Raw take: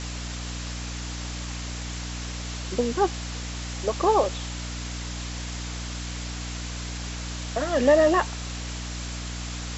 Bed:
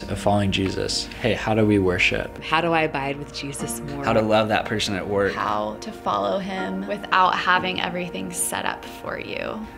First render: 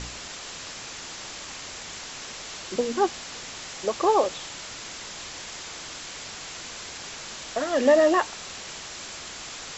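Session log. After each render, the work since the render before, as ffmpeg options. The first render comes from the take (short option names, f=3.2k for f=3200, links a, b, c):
-af "bandreject=f=60:t=h:w=4,bandreject=f=120:t=h:w=4,bandreject=f=180:t=h:w=4,bandreject=f=240:t=h:w=4,bandreject=f=300:t=h:w=4"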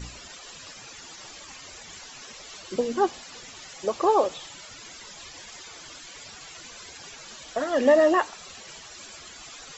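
-af "afftdn=nr=14:nf=-39"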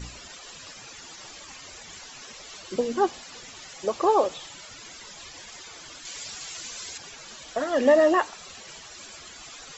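-filter_complex "[0:a]asettb=1/sr,asplit=3[a][b][c];[a]atrim=end=6.054[d];[b]atrim=start=6.05:end=6.98,asetpts=PTS-STARTPTS,afade=t=in:d=0.004:c=qsin,afade=t=out:st=0.926:d=0.004:c=qsin,highshelf=f=3.4k:g=9.5[e];[c]atrim=start=6.976[f];[d][e]acrossfade=d=0.004:c1=hsin:c2=qsin[g];[g][f]acrossfade=d=0.004:c1=qsin:c2=hsin"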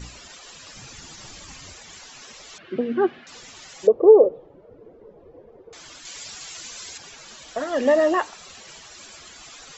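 -filter_complex "[0:a]asettb=1/sr,asplit=3[a][b][c];[a]atrim=end=0.734[d];[b]atrim=start=0.73:end=1.73,asetpts=PTS-STARTPTS,afade=t=in:d=0.004:c=qsin,afade=t=out:st=0.996:d=0.004:c=qsin,bass=f=250:g=12,treble=f=4k:g=2[e];[c]atrim=start=1.726[f];[d][e]acrossfade=d=0.004:c1=hsin:c2=qsin[g];[g][f]acrossfade=d=0.004:c1=qsin:c2=hsin,asettb=1/sr,asplit=3[h][i][j];[h]atrim=end=2.584[k];[i]atrim=start=2.58:end=3.27,asetpts=PTS-STARTPTS,afade=t=in:d=0.004:c=qsin,afade=t=out:st=0.686:d=0.004:c=qsin,highpass=120,equalizer=f=140:t=q:w=4:g=9,equalizer=f=240:t=q:w=4:g=6,equalizer=f=370:t=q:w=4:g=6,equalizer=f=520:t=q:w=4:g=-3,equalizer=f=940:t=q:w=4:g=-10,equalizer=f=1.6k:t=q:w=4:g=5,lowpass=f=2.9k:w=0.5412,lowpass=f=2.9k:w=1.3066[l];[j]atrim=start=3.266[m];[k][l]acrossfade=d=0.004:c1=hsin:c2=qsin[n];[n][m]acrossfade=d=0.004:c1=qsin:c2=hsin,asettb=1/sr,asplit=3[o][p][q];[o]atrim=end=3.874[r];[p]atrim=start=3.87:end=5.73,asetpts=PTS-STARTPTS,afade=t=in:d=0.004:c=qsin,afade=t=out:st=1.856:d=0.004:c=qsin,lowpass=f=460:t=q:w=5.5[s];[q]atrim=start=5.726[t];[r][s]acrossfade=d=0.004:c1=hsin:c2=qsin[u];[u][t]acrossfade=d=0.004:c1=qsin:c2=hsin"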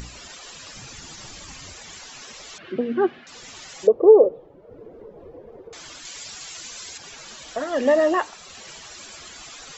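-af "acompressor=mode=upward:threshold=-35dB:ratio=2.5"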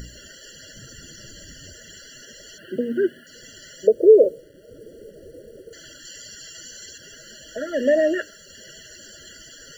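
-af "acrusher=bits=8:mix=0:aa=0.000001,afftfilt=real='re*eq(mod(floor(b*sr/1024/680),2),0)':imag='im*eq(mod(floor(b*sr/1024/680),2),0)':win_size=1024:overlap=0.75"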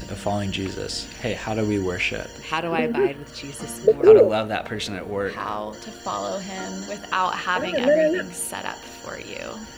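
-filter_complex "[1:a]volume=-5dB[a];[0:a][a]amix=inputs=2:normalize=0"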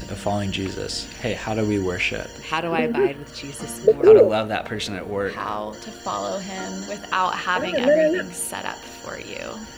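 -af "volume=1dB,alimiter=limit=-2dB:level=0:latency=1"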